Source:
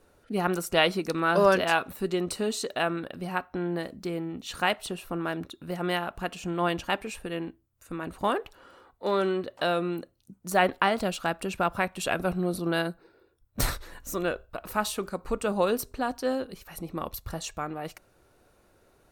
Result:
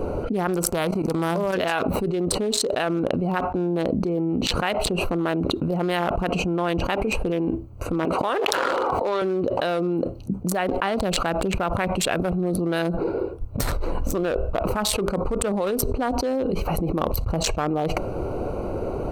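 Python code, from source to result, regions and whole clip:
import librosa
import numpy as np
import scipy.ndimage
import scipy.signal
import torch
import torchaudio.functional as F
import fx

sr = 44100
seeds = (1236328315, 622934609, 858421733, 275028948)

y = fx.envelope_flatten(x, sr, power=0.6, at=(0.67, 1.52), fade=0.02)
y = fx.peak_eq(y, sr, hz=3500.0, db=-9.0, octaves=0.86, at=(0.67, 1.52), fade=0.02)
y = fx.level_steps(y, sr, step_db=17, at=(0.67, 1.52), fade=0.02)
y = fx.chain(y, sr, fx.weighting(curve='A'),
    fx.sustainer(db_per_s=25.0), at=(8.05, 9.22))
y = fx.wiener(y, sr, points=25)
y = fx.peak_eq(y, sr, hz=470.0, db=2.5, octaves=0.77)
y = fx.env_flatten(y, sr, amount_pct=100)
y = y * librosa.db_to_amplitude(-4.5)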